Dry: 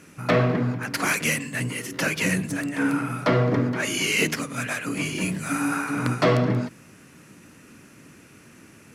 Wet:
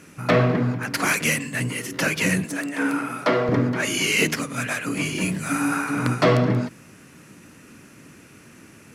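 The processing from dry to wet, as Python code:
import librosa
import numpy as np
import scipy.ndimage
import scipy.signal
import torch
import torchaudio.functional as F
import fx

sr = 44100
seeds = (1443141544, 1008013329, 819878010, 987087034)

y = fx.highpass(x, sr, hz=270.0, slope=12, at=(2.44, 3.49))
y = y * 10.0 ** (2.0 / 20.0)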